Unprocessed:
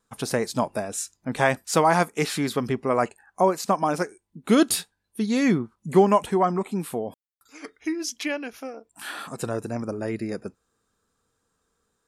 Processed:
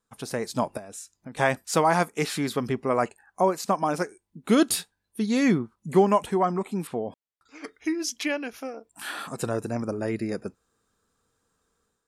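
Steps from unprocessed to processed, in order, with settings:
0:00.77–0:01.37: downward compressor 4 to 1, threshold −38 dBFS, peak gain reduction 12.5 dB
0:06.87–0:07.64: high-frequency loss of the air 120 metres
automatic gain control gain up to 7.5 dB
level −7 dB

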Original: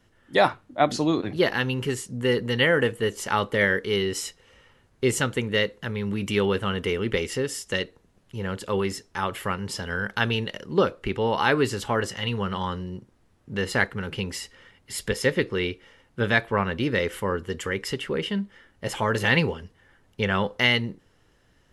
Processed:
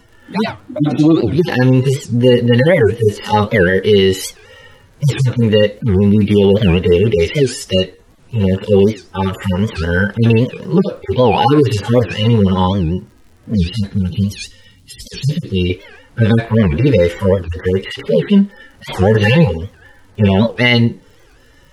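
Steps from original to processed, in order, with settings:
harmonic-percussive split with one part muted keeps harmonic
dynamic equaliser 1,300 Hz, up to −6 dB, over −47 dBFS, Q 1.6
surface crackle 51 per second −58 dBFS
0:13.56–0:15.70: flat-topped bell 940 Hz −14 dB 2.9 octaves
boost into a limiter +19 dB
wow of a warped record 78 rpm, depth 250 cents
level −1 dB

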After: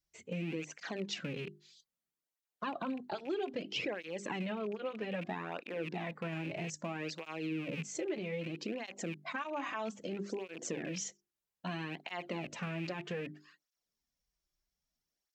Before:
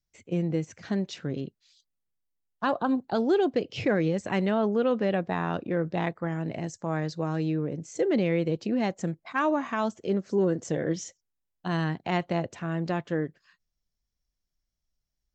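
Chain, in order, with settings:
loose part that buzzes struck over −37 dBFS, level −33 dBFS
dynamic equaliser 2,600 Hz, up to +6 dB, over −48 dBFS, Q 1.6
brickwall limiter −24.5 dBFS, peak gain reduction 12.5 dB
mains-hum notches 50/100/150/200/250/300/350/400 Hz
downward compressor, threshold −34 dBFS, peak gain reduction 7 dB
parametric band 99 Hz −12.5 dB 0.84 octaves
through-zero flanger with one copy inverted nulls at 0.62 Hz, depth 4.6 ms
level +3.5 dB

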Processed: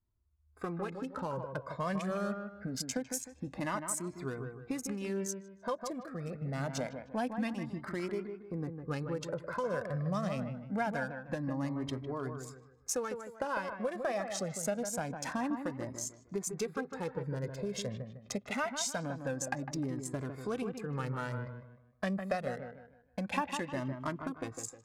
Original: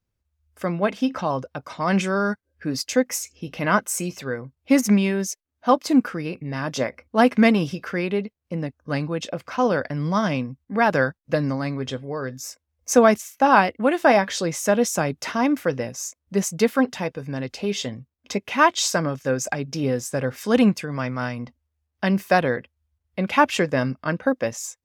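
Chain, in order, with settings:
adaptive Wiener filter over 15 samples
parametric band 9,500 Hz +9.5 dB 0.87 octaves
downward compressor 6 to 1, threshold −28 dBFS, peak gain reduction 17 dB
on a send: delay with a low-pass on its return 154 ms, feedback 33%, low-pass 2,100 Hz, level −7 dB
on the sum: flanger whose copies keep moving one way rising 0.25 Hz

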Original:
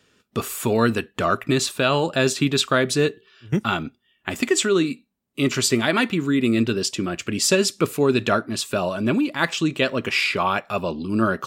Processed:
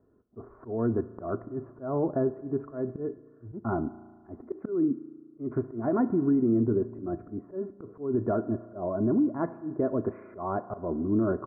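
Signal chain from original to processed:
Gaussian smoothing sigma 9.9 samples
comb filter 2.9 ms, depth 44%
brickwall limiter −18 dBFS, peak gain reduction 9.5 dB
volume swells 181 ms
spring reverb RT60 1.6 s, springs 35 ms, chirp 50 ms, DRR 15.5 dB

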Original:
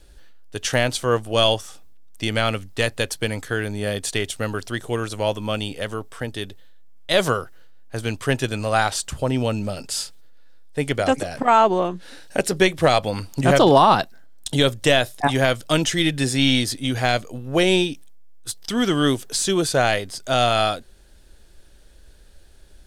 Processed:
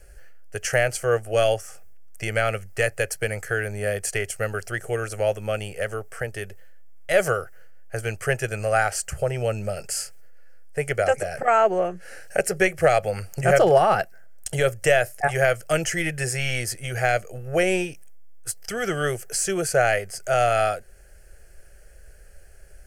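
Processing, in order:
low-shelf EQ 190 Hz −3 dB
in parallel at −3 dB: downward compressor, threshold −31 dBFS, peak gain reduction 19.5 dB
on the sum: phaser with its sweep stopped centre 1,000 Hz, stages 6

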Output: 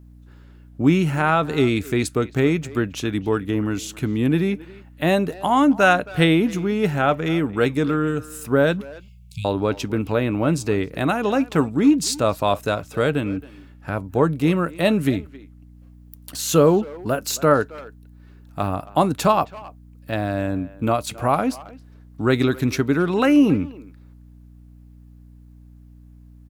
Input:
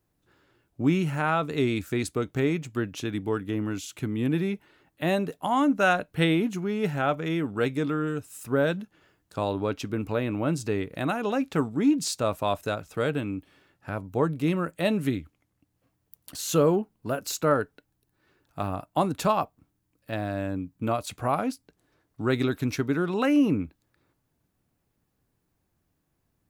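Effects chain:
mains hum 60 Hz, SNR 24 dB
0:08.81–0:09.45: linear-phase brick-wall band-stop 190–2,100 Hz
far-end echo of a speakerphone 270 ms, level −18 dB
level +6.5 dB

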